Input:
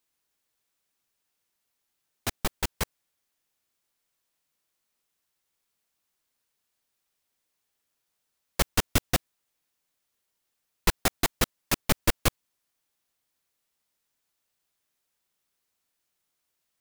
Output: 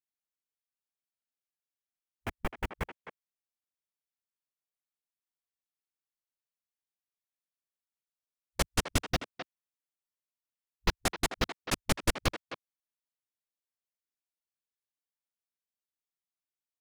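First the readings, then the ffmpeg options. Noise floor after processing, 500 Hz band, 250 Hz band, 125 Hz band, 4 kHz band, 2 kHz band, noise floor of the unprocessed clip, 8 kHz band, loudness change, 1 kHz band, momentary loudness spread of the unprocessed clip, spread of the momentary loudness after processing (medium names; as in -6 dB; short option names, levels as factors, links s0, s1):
under -85 dBFS, -3.5 dB, -4.0 dB, -4.0 dB, -4.5 dB, -3.5 dB, -80 dBFS, -6.5 dB, -5.0 dB, -3.5 dB, 10 LU, 17 LU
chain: -filter_complex "[0:a]afwtdn=0.0126,asplit=2[s0][s1];[s1]adelay=260,highpass=300,lowpass=3400,asoftclip=type=hard:threshold=0.168,volume=0.355[s2];[s0][s2]amix=inputs=2:normalize=0,volume=0.631"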